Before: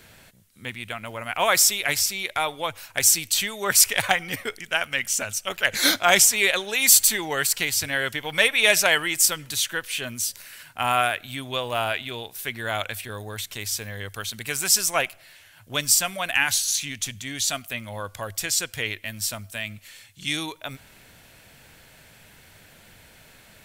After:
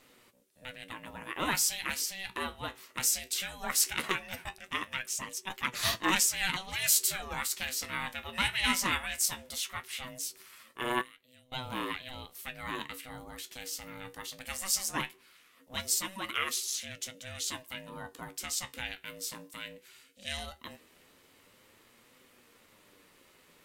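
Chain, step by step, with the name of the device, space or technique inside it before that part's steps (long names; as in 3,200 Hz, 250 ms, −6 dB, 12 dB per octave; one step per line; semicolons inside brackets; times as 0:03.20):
0:11.01–0:11.52: guitar amp tone stack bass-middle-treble 6-0-2
alien voice (ring modulation 380 Hz; flanger 0.18 Hz, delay 7.6 ms, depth 9.9 ms, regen +56%)
level −3.5 dB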